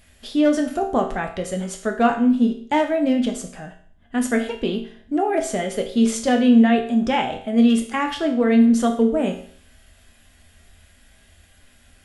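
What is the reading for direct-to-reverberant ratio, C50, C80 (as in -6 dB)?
2.5 dB, 9.0 dB, 13.0 dB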